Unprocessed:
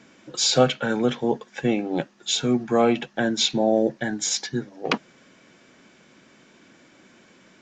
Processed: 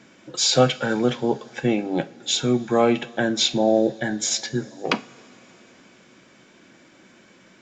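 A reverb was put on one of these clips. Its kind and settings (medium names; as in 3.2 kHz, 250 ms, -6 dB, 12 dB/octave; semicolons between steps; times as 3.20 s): two-slope reverb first 0.31 s, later 4.6 s, from -22 dB, DRR 11.5 dB; trim +1 dB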